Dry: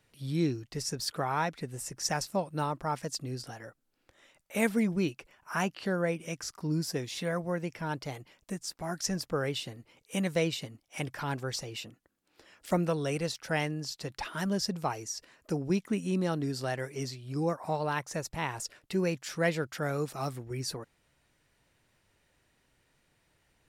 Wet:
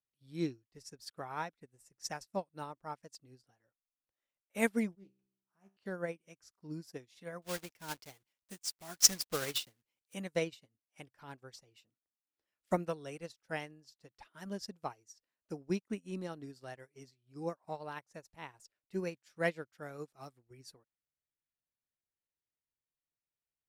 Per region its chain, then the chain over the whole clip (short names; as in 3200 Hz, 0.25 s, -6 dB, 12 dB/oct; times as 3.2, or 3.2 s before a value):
4.95–5.77 bell 2700 Hz -10.5 dB 2.9 oct + resonator 65 Hz, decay 0.88 s, mix 80% + Doppler distortion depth 0.16 ms
7.42–10.14 block floating point 3-bit + high shelf 2000 Hz +9 dB
whole clip: dynamic EQ 150 Hz, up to -4 dB, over -44 dBFS, Q 2.5; upward expander 2.5:1, over -45 dBFS; gain +3 dB